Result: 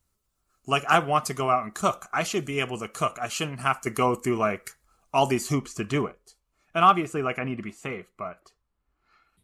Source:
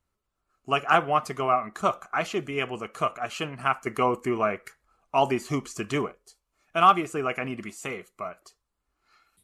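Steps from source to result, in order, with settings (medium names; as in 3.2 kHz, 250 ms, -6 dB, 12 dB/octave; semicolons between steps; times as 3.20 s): tone controls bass +5 dB, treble +11 dB, from 5.52 s treble -1 dB, from 7.38 s treble -9 dB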